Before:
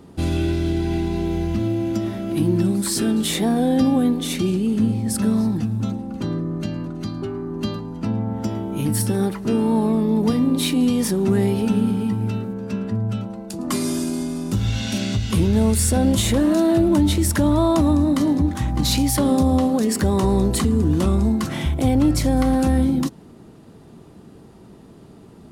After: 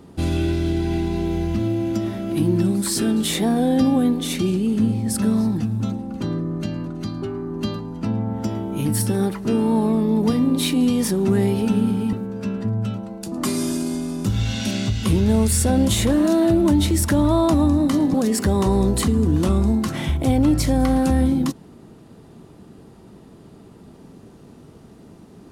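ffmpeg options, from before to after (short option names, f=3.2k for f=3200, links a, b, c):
-filter_complex "[0:a]asplit=3[a][b][c];[a]atrim=end=12.132[d];[b]atrim=start=12.398:end=18.412[e];[c]atrim=start=19.708[f];[d][e]acrossfade=d=0.004:c1=hsin:c2=hsin[g];[g][f]acrossfade=d=0.004:c1=hsin:c2=hsin"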